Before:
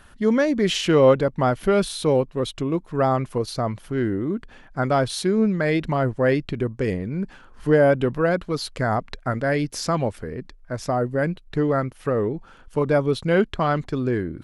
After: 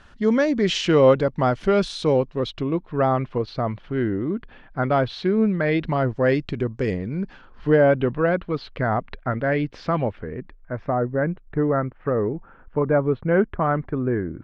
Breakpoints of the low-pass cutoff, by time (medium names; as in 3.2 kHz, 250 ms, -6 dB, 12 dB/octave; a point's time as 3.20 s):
low-pass 24 dB/octave
2.20 s 6.6 kHz
2.84 s 3.7 kHz
5.65 s 3.7 kHz
6.29 s 6.7 kHz
6.98 s 6.7 kHz
8.02 s 3.3 kHz
10.00 s 3.3 kHz
11.11 s 1.9 kHz